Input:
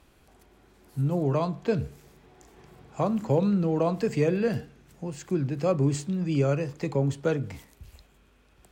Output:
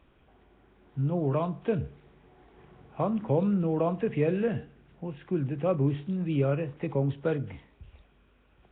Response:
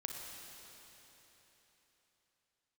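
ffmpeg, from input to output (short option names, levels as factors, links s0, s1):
-af "volume=0.794" -ar 8000 -c:a nellymoser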